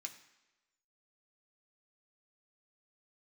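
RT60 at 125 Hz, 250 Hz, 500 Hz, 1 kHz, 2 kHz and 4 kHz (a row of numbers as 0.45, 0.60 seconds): 0.85, 0.95, 1.1, 1.1, 1.1, 1.0 seconds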